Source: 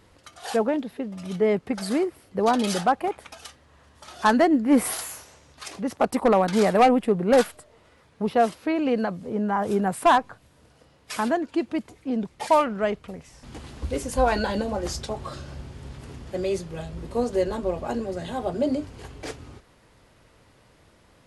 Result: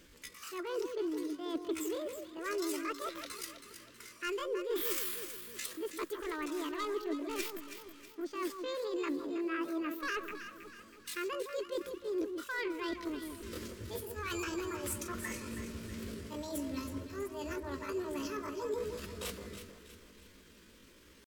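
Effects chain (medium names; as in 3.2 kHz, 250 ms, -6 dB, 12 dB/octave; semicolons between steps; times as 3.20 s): bass shelf 62 Hz +4 dB; reverse; compression 10:1, threshold -31 dBFS, peak gain reduction 17.5 dB; reverse; pitch shift +8.5 st; static phaser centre 320 Hz, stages 4; on a send: echo whose repeats swap between lows and highs 161 ms, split 1.2 kHz, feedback 66%, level -6 dB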